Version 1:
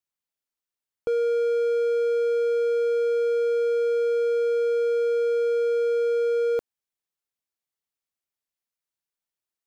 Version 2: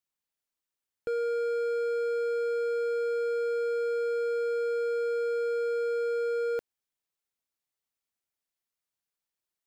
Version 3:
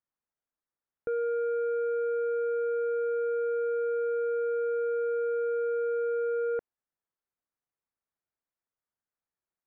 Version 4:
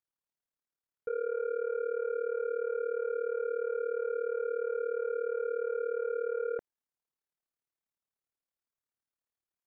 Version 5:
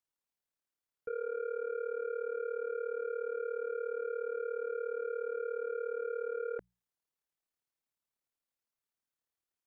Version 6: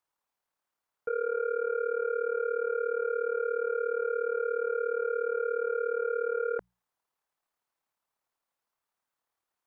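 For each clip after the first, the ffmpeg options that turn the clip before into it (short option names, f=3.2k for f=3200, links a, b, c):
-af "volume=28dB,asoftclip=hard,volume=-28dB"
-af "lowpass=f=1.8k:w=0.5412,lowpass=f=1.8k:w=1.3066"
-af "tremolo=f=37:d=0.889"
-filter_complex "[0:a]bandreject=f=60:t=h:w=6,bandreject=f=120:t=h:w=6,bandreject=f=180:t=h:w=6,acrossover=split=460|1100[a][b][c];[b]alimiter=level_in=20dB:limit=-24dB:level=0:latency=1:release=102,volume=-20dB[d];[a][d][c]amix=inputs=3:normalize=0"
-af "equalizer=f=960:w=0.77:g=11.5,volume=1.5dB"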